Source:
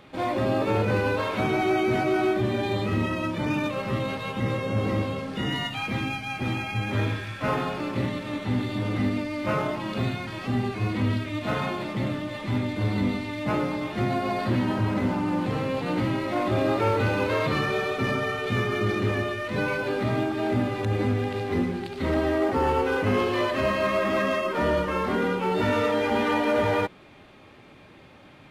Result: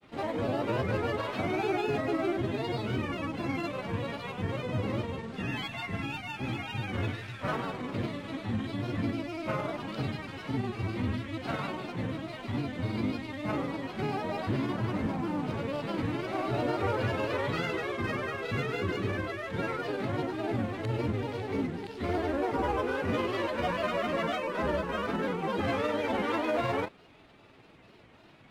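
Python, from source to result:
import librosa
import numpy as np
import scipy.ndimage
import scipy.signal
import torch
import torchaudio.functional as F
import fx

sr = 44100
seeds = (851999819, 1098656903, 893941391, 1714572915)

y = fx.granulator(x, sr, seeds[0], grain_ms=100.0, per_s=20.0, spray_ms=15.0, spread_st=3)
y = y * 10.0 ** (-5.0 / 20.0)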